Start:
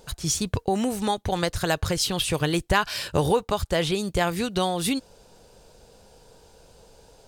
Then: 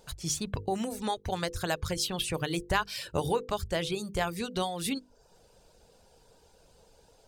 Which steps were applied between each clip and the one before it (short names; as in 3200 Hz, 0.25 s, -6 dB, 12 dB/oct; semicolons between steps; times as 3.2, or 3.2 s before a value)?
reverb removal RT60 0.56 s; notches 50/100/150/200/250/300/350/400/450/500 Hz; gain -6 dB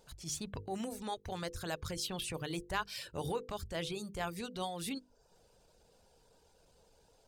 transient shaper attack -8 dB, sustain -1 dB; gain -5.5 dB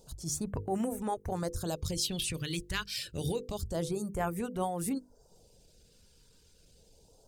phaser stages 2, 0.28 Hz, lowest notch 710–4000 Hz; gain +6.5 dB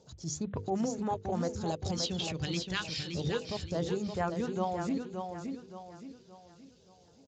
on a send: feedback echo 0.571 s, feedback 39%, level -6 dB; on the sum: Speex 34 kbps 16000 Hz